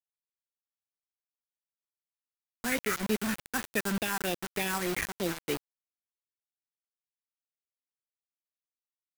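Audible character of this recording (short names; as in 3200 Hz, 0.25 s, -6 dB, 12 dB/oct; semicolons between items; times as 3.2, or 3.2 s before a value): aliases and images of a low sample rate 4300 Hz, jitter 0%; phasing stages 4, 3.3 Hz, lowest notch 550–1200 Hz; a quantiser's noise floor 6-bit, dither none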